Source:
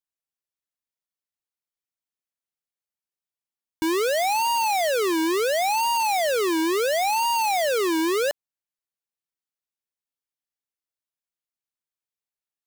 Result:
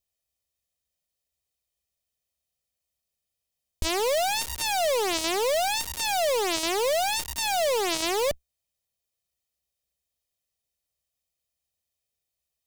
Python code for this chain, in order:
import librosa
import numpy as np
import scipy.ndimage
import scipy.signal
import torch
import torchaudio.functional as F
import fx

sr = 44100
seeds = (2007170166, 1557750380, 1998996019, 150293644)

p1 = fx.lower_of_two(x, sr, delay_ms=1.6)
p2 = fx.peak_eq(p1, sr, hz=1400.0, db=-12.5, octaves=0.88)
p3 = fx.over_compress(p2, sr, threshold_db=-34.0, ratio=-0.5)
p4 = p2 + (p3 * librosa.db_to_amplitude(1.0))
p5 = fx.peak_eq(p4, sr, hz=65.0, db=12.5, octaves=0.61)
y = fx.slew_limit(p5, sr, full_power_hz=890.0)